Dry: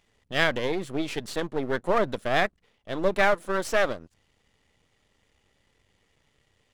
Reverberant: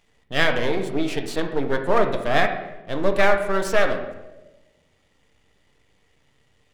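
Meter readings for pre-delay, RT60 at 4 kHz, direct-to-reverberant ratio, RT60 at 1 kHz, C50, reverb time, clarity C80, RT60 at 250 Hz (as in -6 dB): 4 ms, 0.75 s, 4.0 dB, 0.85 s, 7.5 dB, 1.1 s, 10.0 dB, 1.3 s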